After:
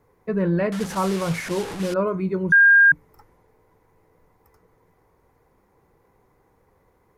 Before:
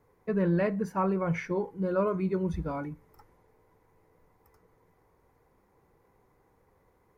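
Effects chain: 0.72–1.94 s: one-bit delta coder 64 kbps, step -31 dBFS; 2.52–2.92 s: bleep 1.61 kHz -14 dBFS; trim +4.5 dB

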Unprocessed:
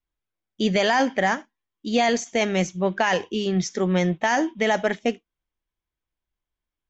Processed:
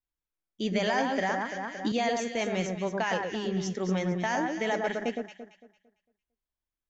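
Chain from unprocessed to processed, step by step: on a send: echo whose repeats swap between lows and highs 113 ms, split 1.8 kHz, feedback 55%, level -3 dB; 0.98–1.92 s: on the sum: three bands compressed up and down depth 100%; trim -8.5 dB

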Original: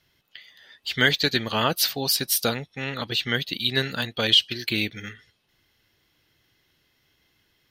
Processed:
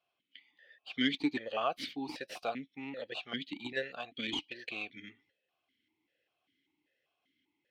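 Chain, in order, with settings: tracing distortion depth 0.07 ms; stepped vowel filter 5.1 Hz

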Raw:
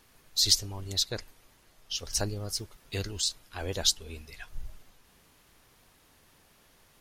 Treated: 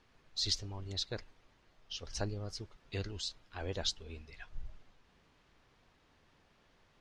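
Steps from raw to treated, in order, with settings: distance through air 140 m; trim -4.5 dB

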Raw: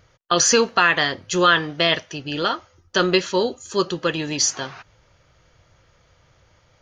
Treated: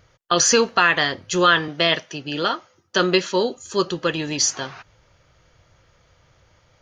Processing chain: 1.68–3.57 s: high-pass 130 Hz 24 dB/octave

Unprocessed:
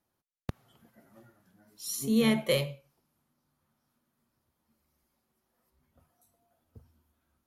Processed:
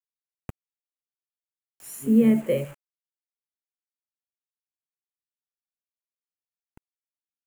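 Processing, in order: 2.06–2.65 s: graphic EQ 250/500/1000/4000/8000 Hz +11/+6/-7/-6/-12 dB; bit crusher 7-bit; high-order bell 4.5 kHz -12.5 dB 1 oct; trim -2.5 dB

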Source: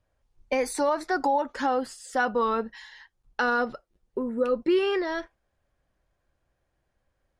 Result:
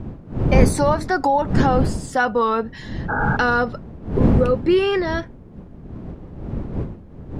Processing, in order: wind noise 200 Hz -29 dBFS; spectral replace 3.12–3.34 s, 230–1700 Hz after; trim +6 dB

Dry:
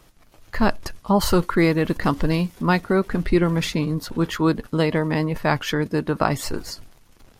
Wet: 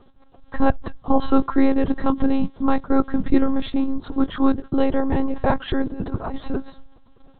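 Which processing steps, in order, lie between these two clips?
peaking EQ 2.3 kHz -14.5 dB 1.1 oct; 5.82–6.39 s: compressor with a negative ratio -27 dBFS, ratio -0.5; monotone LPC vocoder at 8 kHz 270 Hz; trim +3.5 dB

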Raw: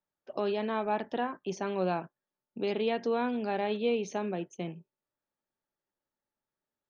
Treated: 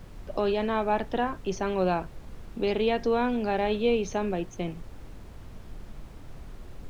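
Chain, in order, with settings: added noise brown -45 dBFS; trim +4.5 dB

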